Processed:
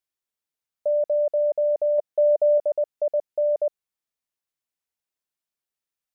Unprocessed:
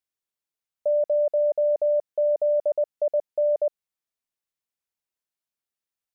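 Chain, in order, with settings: 1.98–2.58 dynamic EQ 630 Hz, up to +4 dB, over -35 dBFS, Q 2.4

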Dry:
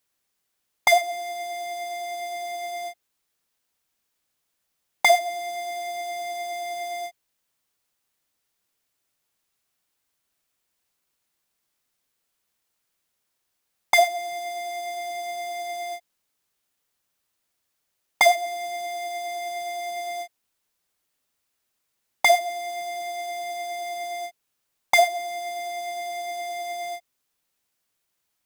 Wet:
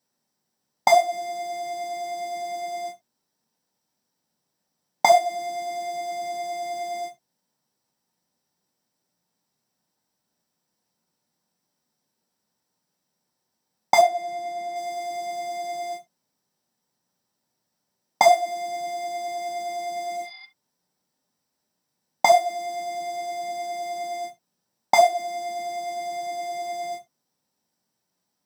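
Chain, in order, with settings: 14.01–14.76 high shelf 3800 Hz -8.5 dB; 20.18–20.43 spectral repair 750–5100 Hz before; reverb, pre-delay 3 ms, DRR 3 dB; gain -7 dB

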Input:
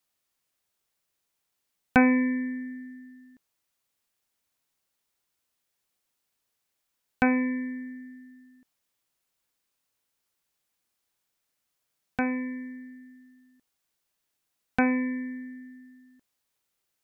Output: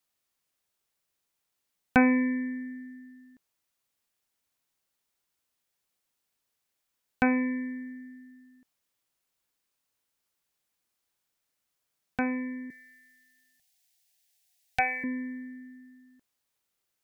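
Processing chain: 12.7–15.04 EQ curve 130 Hz 0 dB, 300 Hz -29 dB, 750 Hz +6 dB, 1100 Hz -18 dB, 1800 Hz +4 dB, 3000 Hz +7 dB, 5000 Hz +10 dB; gain -1.5 dB

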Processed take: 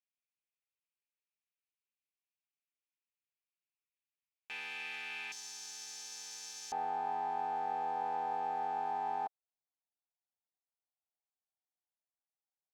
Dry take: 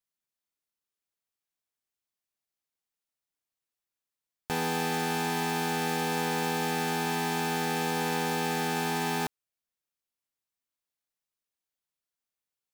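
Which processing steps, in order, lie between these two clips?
band-pass 2500 Hz, Q 4.5, from 5.32 s 6000 Hz, from 6.72 s 770 Hz

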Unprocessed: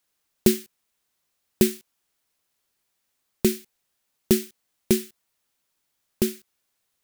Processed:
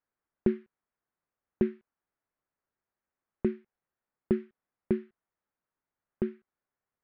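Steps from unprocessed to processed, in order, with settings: LPF 1800 Hz 24 dB/oct; gain -7 dB

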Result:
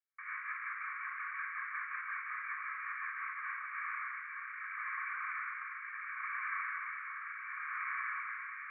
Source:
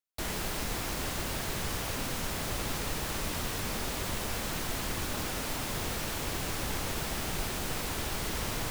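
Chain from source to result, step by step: Chebyshev band-pass 1100–2300 Hz, order 5; limiter -37 dBFS, peak gain reduction 5.5 dB; rotary speaker horn 5.5 Hz, later 0.7 Hz, at 3.08; shoebox room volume 3700 m³, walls furnished, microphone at 5.7 m; gain +3 dB

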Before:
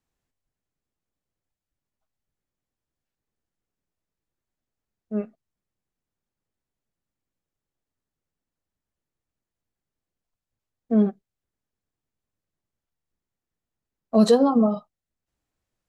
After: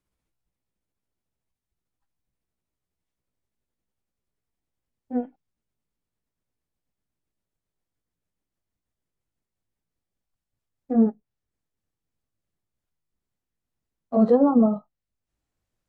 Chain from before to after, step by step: gliding pitch shift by +4.5 st ending unshifted; low shelf 220 Hz +4 dB; treble ducked by the level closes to 1100 Hz, closed at -21 dBFS

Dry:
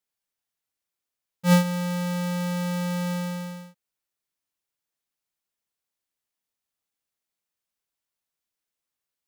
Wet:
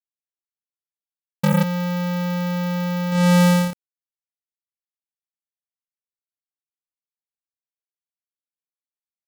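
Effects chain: bit-crush 10-bit; sine folder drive 19 dB, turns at -13 dBFS

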